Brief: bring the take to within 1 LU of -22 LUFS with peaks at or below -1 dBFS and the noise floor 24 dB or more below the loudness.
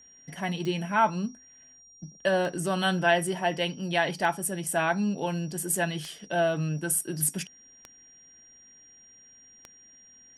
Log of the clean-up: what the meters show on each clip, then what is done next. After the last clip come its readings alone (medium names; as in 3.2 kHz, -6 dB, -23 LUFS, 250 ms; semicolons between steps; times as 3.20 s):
clicks found 6; steady tone 5.7 kHz; tone level -52 dBFS; loudness -27.5 LUFS; peak level -10.5 dBFS; loudness target -22.0 LUFS
-> de-click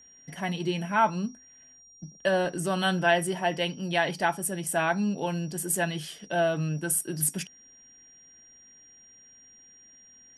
clicks found 0; steady tone 5.7 kHz; tone level -52 dBFS
-> band-stop 5.7 kHz, Q 30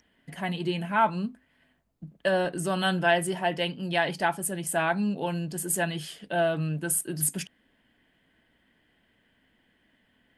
steady tone not found; loudness -28.0 LUFS; peak level -10.5 dBFS; loudness target -22.0 LUFS
-> trim +6 dB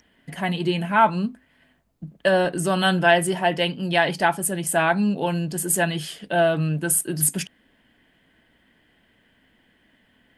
loudness -22.0 LUFS; peak level -4.5 dBFS; noise floor -63 dBFS